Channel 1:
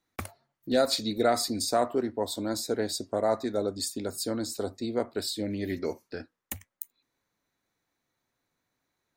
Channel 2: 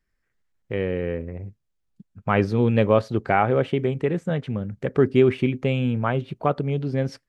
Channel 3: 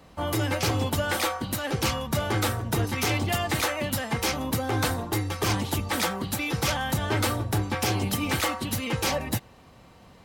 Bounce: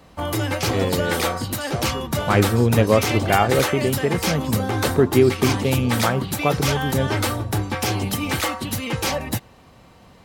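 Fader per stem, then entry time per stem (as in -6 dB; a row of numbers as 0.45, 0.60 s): -7.0, +1.5, +3.0 dB; 0.00, 0.00, 0.00 s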